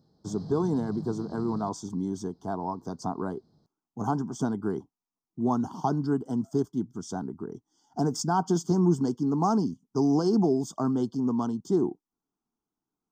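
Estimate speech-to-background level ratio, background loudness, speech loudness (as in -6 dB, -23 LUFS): 13.5 dB, -42.0 LUFS, -28.5 LUFS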